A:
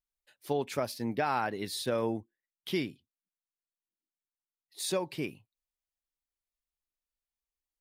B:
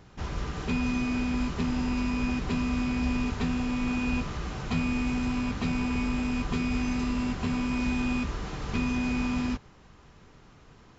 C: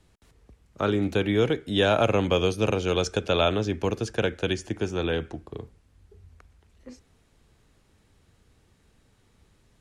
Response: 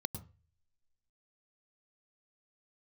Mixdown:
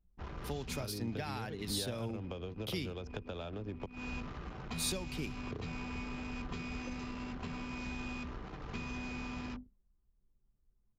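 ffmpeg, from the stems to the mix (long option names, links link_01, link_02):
-filter_complex "[0:a]volume=0dB[link_01];[1:a]bandreject=frequency=50:width_type=h:width=6,bandreject=frequency=100:width_type=h:width=6,bandreject=frequency=150:width_type=h:width=6,bandreject=frequency=200:width_type=h:width=6,bandreject=frequency=250:width_type=h:width=6,volume=-7dB[link_02];[2:a]lowpass=frequency=1200:poles=1,volume=0.5dB,asplit=3[link_03][link_04][link_05];[link_03]atrim=end=3.86,asetpts=PTS-STARTPTS,afade=type=out:start_time=3.856:duration=0.004:curve=hsin[link_06];[link_04]atrim=start=3.86:end=5.38,asetpts=PTS-STARTPTS,volume=0[link_07];[link_05]atrim=start=5.38,asetpts=PTS-STARTPTS,afade=type=in:duration=0.004:curve=hsin[link_08];[link_06][link_07][link_08]concat=n=3:v=0:a=1[link_09];[link_02][link_09]amix=inputs=2:normalize=0,lowshelf=frequency=260:gain=-3.5,acompressor=threshold=-33dB:ratio=10,volume=0dB[link_10];[link_01][link_10]amix=inputs=2:normalize=0,anlmdn=0.0398,acrossover=split=180|3000[link_11][link_12][link_13];[link_12]acompressor=threshold=-41dB:ratio=6[link_14];[link_11][link_14][link_13]amix=inputs=3:normalize=0"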